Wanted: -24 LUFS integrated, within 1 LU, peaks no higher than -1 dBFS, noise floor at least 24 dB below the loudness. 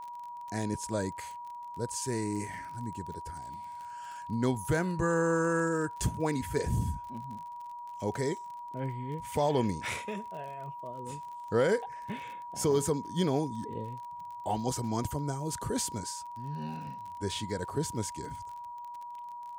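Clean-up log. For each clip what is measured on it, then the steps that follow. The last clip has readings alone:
tick rate 35 per s; steady tone 960 Hz; tone level -40 dBFS; loudness -34.0 LUFS; peak level -17.0 dBFS; loudness target -24.0 LUFS
-> de-click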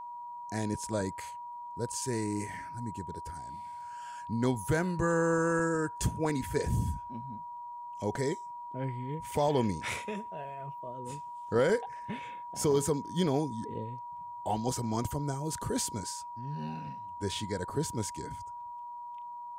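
tick rate 0.051 per s; steady tone 960 Hz; tone level -40 dBFS
-> band-stop 960 Hz, Q 30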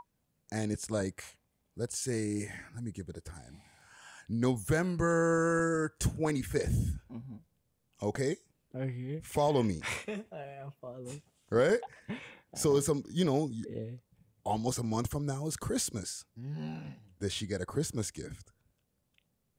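steady tone not found; loudness -33.0 LUFS; peak level -17.0 dBFS; loudness target -24.0 LUFS
-> trim +9 dB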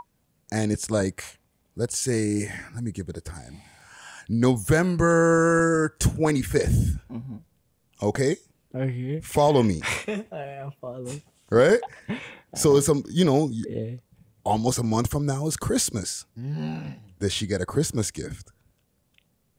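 loudness -24.5 LUFS; peak level -8.0 dBFS; noise floor -69 dBFS

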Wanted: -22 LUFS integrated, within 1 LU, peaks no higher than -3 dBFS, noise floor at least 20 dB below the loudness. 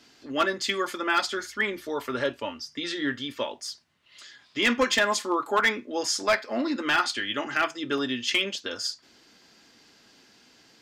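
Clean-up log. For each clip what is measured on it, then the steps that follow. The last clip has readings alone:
clipped samples 0.3%; clipping level -15.5 dBFS; dropouts 1; longest dropout 1.7 ms; loudness -27.0 LUFS; peak level -15.5 dBFS; loudness target -22.0 LUFS
-> clip repair -15.5 dBFS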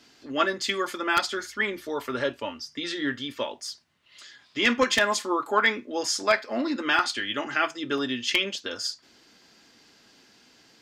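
clipped samples 0.0%; dropouts 1; longest dropout 1.7 ms
-> interpolate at 7.98 s, 1.7 ms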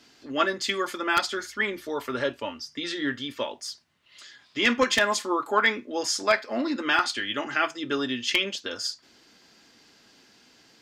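dropouts 0; loudness -26.5 LUFS; peak level -6.5 dBFS; loudness target -22.0 LUFS
-> trim +4.5 dB; peak limiter -3 dBFS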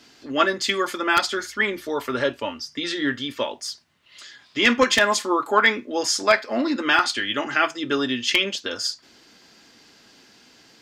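loudness -22.0 LUFS; peak level -3.0 dBFS; noise floor -54 dBFS

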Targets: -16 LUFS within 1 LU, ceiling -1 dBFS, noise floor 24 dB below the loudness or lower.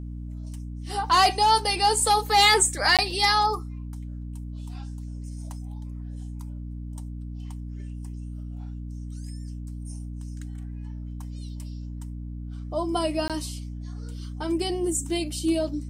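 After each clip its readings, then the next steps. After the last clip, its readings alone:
dropouts 2; longest dropout 17 ms; hum 60 Hz; highest harmonic 300 Hz; hum level -33 dBFS; loudness -22.5 LUFS; peak level -8.5 dBFS; loudness target -16.0 LUFS
-> interpolate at 2.97/13.28 s, 17 ms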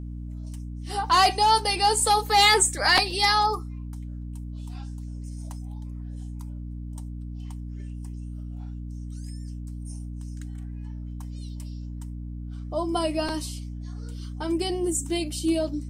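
dropouts 0; hum 60 Hz; highest harmonic 300 Hz; hum level -33 dBFS
-> hum notches 60/120/180/240/300 Hz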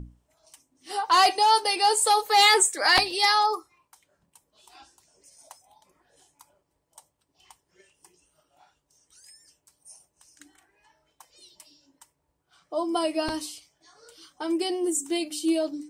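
hum not found; loudness -22.5 LUFS; peak level -6.5 dBFS; loudness target -16.0 LUFS
-> trim +6.5 dB; peak limiter -1 dBFS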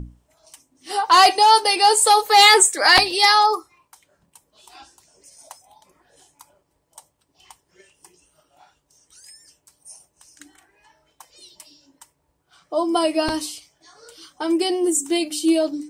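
loudness -16.0 LUFS; peak level -1.0 dBFS; noise floor -70 dBFS

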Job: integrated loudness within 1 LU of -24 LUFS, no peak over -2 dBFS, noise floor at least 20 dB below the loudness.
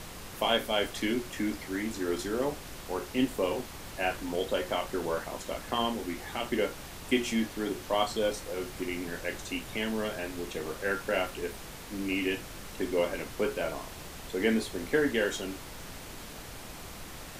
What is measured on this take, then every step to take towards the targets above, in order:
noise floor -44 dBFS; noise floor target -52 dBFS; loudness -32.0 LUFS; peak level -12.5 dBFS; loudness target -24.0 LUFS
-> noise print and reduce 8 dB; trim +8 dB

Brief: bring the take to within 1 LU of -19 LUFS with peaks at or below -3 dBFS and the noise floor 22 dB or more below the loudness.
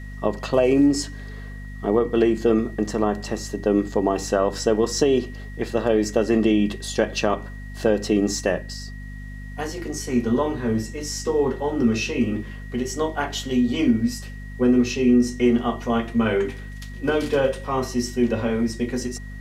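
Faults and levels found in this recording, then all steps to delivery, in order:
hum 50 Hz; highest harmonic 250 Hz; hum level -33 dBFS; steady tone 1.9 kHz; tone level -44 dBFS; loudness -22.5 LUFS; peak level -5.5 dBFS; loudness target -19.0 LUFS
-> hum notches 50/100/150/200/250 Hz; band-stop 1.9 kHz, Q 30; trim +3.5 dB; peak limiter -3 dBFS

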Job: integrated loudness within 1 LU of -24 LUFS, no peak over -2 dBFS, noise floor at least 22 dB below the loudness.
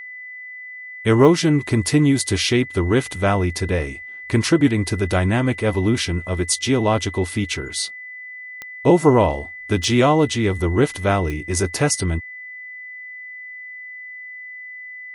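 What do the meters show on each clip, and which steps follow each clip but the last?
clicks found 4; steady tone 2 kHz; tone level -33 dBFS; loudness -19.5 LUFS; peak level -2.5 dBFS; loudness target -24.0 LUFS
-> de-click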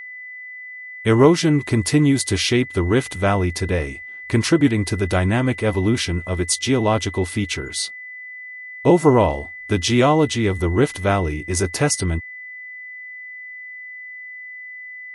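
clicks found 0; steady tone 2 kHz; tone level -33 dBFS
-> band-stop 2 kHz, Q 30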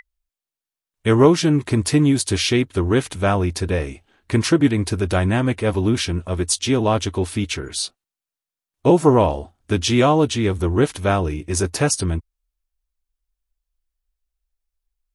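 steady tone not found; loudness -19.5 LUFS; peak level -2.5 dBFS; loudness target -24.0 LUFS
-> trim -4.5 dB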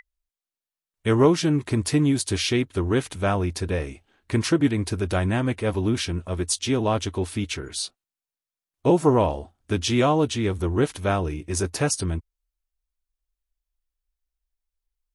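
loudness -24.0 LUFS; peak level -7.0 dBFS; noise floor -92 dBFS

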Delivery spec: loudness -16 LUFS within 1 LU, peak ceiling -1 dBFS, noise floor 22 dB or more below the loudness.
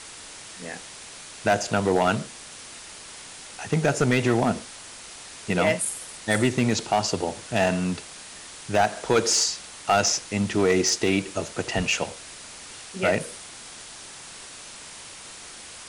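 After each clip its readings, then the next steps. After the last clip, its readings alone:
clipped samples 0.5%; clipping level -13.5 dBFS; noise floor -42 dBFS; noise floor target -46 dBFS; loudness -24.0 LUFS; peak level -13.5 dBFS; loudness target -16.0 LUFS
-> clip repair -13.5 dBFS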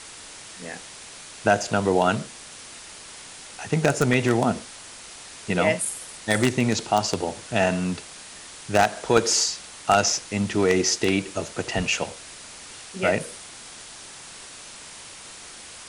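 clipped samples 0.0%; noise floor -42 dBFS; noise floor target -45 dBFS
-> noise reduction 6 dB, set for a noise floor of -42 dBFS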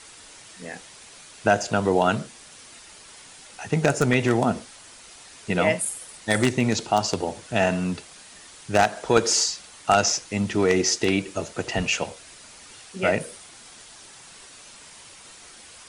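noise floor -47 dBFS; loudness -23.5 LUFS; peak level -4.5 dBFS; loudness target -16.0 LUFS
-> trim +7.5 dB; peak limiter -1 dBFS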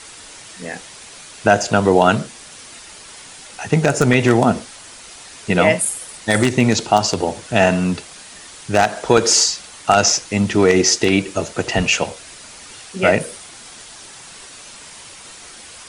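loudness -16.5 LUFS; peak level -1.0 dBFS; noise floor -39 dBFS

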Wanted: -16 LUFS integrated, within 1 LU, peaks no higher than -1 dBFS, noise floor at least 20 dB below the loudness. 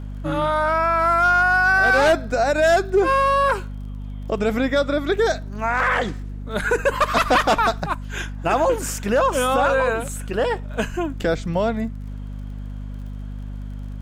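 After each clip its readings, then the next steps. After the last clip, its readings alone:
tick rate 42 per s; hum 50 Hz; highest harmonic 250 Hz; hum level -28 dBFS; loudness -20.0 LUFS; peak level -9.0 dBFS; loudness target -16.0 LUFS
-> de-click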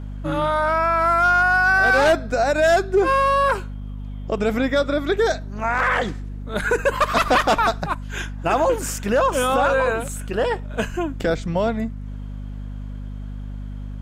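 tick rate 0.14 per s; hum 50 Hz; highest harmonic 250 Hz; hum level -29 dBFS
-> hum notches 50/100/150/200/250 Hz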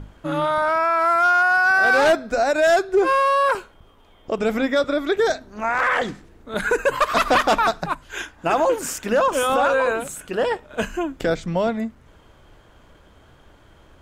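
hum not found; loudness -20.0 LUFS; peak level -9.0 dBFS; loudness target -16.0 LUFS
-> trim +4 dB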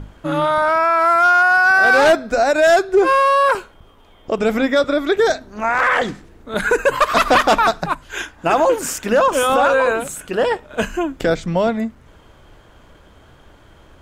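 loudness -16.0 LUFS; peak level -5.0 dBFS; noise floor -48 dBFS

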